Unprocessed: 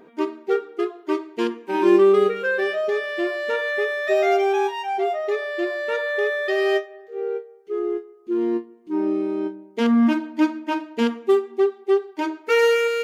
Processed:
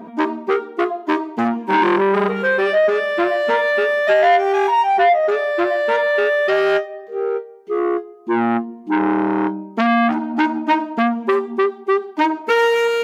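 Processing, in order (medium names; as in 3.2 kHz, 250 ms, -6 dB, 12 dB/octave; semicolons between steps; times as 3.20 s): small resonant body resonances 220/680/960 Hz, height 17 dB, ringing for 45 ms; compression 4:1, threshold -14 dBFS, peak gain reduction 13 dB; transformer saturation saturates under 1.5 kHz; trim +4.5 dB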